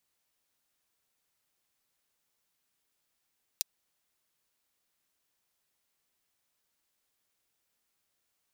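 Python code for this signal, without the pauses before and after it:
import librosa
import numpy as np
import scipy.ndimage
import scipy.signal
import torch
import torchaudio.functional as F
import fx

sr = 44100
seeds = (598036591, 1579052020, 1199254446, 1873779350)

y = fx.drum_hat(sr, length_s=0.24, from_hz=4200.0, decay_s=0.02)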